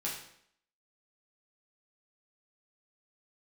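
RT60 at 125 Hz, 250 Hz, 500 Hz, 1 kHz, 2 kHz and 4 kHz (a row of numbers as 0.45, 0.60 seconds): 0.60, 0.70, 0.70, 0.65, 0.65, 0.60 seconds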